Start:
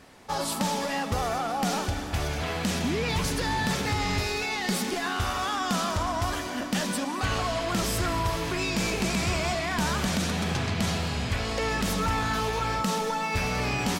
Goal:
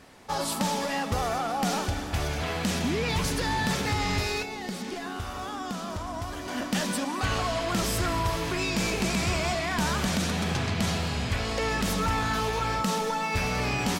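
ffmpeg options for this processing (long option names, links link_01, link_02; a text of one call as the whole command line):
ffmpeg -i in.wav -filter_complex "[0:a]asettb=1/sr,asplit=3[link_01][link_02][link_03];[link_01]atrim=end=4.424[link_04];[link_02]atrim=start=4.42:end=6.48,asetpts=PTS-STARTPTS,afade=type=in:duration=0.004:curve=qsin,afade=type=out:start_time=2.056:duration=0.004:curve=qsin,acrossover=split=710|7500[link_05][link_06][link_07];[link_05]acompressor=threshold=-33dB:ratio=4[link_08];[link_06]acompressor=threshold=-40dB:ratio=4[link_09];[link_07]acompressor=threshold=-55dB:ratio=4[link_10];[link_08][link_09][link_10]amix=inputs=3:normalize=0[link_11];[link_03]atrim=start=6.476[link_12];[link_04][link_11]acrossfade=duration=0.004:curve1=hsin:curve2=qsin[link_13];[link_13][link_12]acrossfade=duration=0.004:curve1=qsin:curve2=hsin" out.wav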